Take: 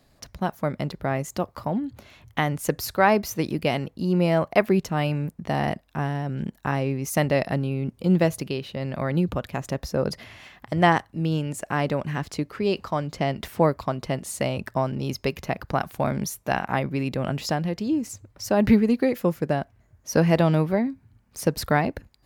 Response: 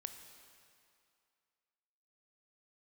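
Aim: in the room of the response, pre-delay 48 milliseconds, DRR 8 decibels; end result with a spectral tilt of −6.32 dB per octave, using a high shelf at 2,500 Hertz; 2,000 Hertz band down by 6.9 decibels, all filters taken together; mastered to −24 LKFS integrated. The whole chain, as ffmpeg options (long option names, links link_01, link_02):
-filter_complex "[0:a]equalizer=frequency=2000:width_type=o:gain=-5.5,highshelf=frequency=2500:gain=-7.5,asplit=2[link_01][link_02];[1:a]atrim=start_sample=2205,adelay=48[link_03];[link_02][link_03]afir=irnorm=-1:irlink=0,volume=-4.5dB[link_04];[link_01][link_04]amix=inputs=2:normalize=0,volume=1.5dB"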